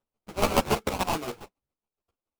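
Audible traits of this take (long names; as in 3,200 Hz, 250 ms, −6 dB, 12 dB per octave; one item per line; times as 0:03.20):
chopped level 7.1 Hz, depth 65%, duty 25%
aliases and images of a low sample rate 1,800 Hz, jitter 20%
a shimmering, thickened sound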